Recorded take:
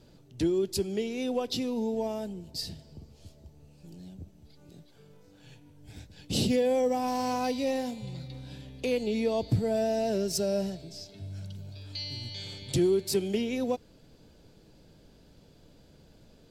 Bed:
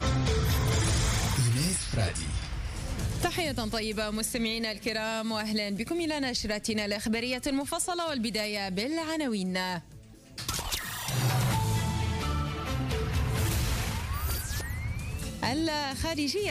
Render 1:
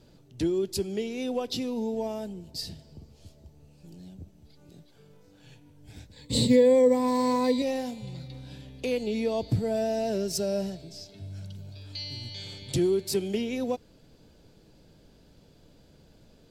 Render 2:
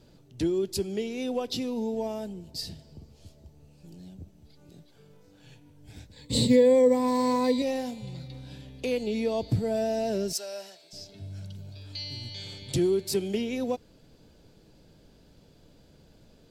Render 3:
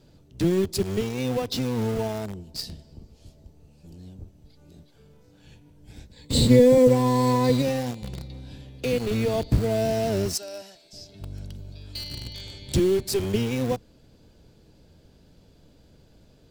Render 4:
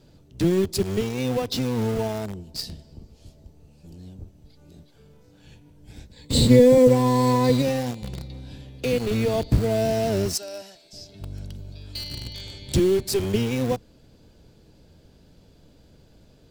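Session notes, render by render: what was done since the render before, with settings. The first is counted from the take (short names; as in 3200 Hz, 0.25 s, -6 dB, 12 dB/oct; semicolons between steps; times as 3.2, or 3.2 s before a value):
6.12–7.62 ripple EQ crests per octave 1, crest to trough 14 dB
10.33–10.93 HPF 920 Hz
octaver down 1 oct, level -1 dB; in parallel at -8 dB: bit-crush 5-bit
gain +1.5 dB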